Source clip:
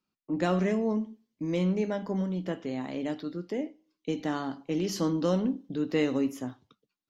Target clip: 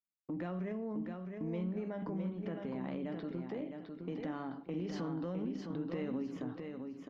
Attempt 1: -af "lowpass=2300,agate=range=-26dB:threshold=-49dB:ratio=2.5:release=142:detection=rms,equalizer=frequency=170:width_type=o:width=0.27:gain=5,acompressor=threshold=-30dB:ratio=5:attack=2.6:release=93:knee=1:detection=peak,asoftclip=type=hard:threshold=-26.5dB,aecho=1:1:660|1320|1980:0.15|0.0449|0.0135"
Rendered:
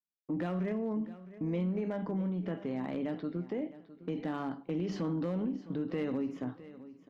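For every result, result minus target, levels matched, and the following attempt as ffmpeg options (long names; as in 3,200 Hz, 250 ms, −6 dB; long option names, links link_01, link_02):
echo-to-direct −11 dB; downward compressor: peak gain reduction −5.5 dB
-af "lowpass=2300,agate=range=-26dB:threshold=-49dB:ratio=2.5:release=142:detection=rms,equalizer=frequency=170:width_type=o:width=0.27:gain=5,acompressor=threshold=-30dB:ratio=5:attack=2.6:release=93:knee=1:detection=peak,asoftclip=type=hard:threshold=-26.5dB,aecho=1:1:660|1320|1980|2640:0.531|0.159|0.0478|0.0143"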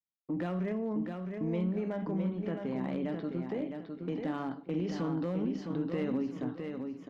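downward compressor: peak gain reduction −5.5 dB
-af "lowpass=2300,agate=range=-26dB:threshold=-49dB:ratio=2.5:release=142:detection=rms,equalizer=frequency=170:width_type=o:width=0.27:gain=5,acompressor=threshold=-37dB:ratio=5:attack=2.6:release=93:knee=1:detection=peak,asoftclip=type=hard:threshold=-26.5dB,aecho=1:1:660|1320|1980|2640:0.531|0.159|0.0478|0.0143"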